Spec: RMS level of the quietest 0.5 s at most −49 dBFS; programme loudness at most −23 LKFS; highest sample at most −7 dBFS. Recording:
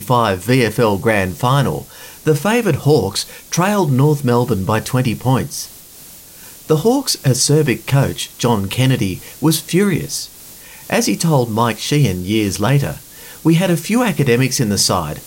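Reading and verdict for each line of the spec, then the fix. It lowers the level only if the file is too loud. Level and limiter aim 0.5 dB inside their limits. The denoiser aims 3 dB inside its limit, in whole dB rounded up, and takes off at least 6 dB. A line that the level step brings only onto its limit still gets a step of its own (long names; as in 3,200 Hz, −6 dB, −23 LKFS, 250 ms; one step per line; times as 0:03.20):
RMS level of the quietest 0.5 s −39 dBFS: out of spec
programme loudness −16.0 LKFS: out of spec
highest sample −2.5 dBFS: out of spec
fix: broadband denoise 6 dB, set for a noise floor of −39 dBFS
level −7.5 dB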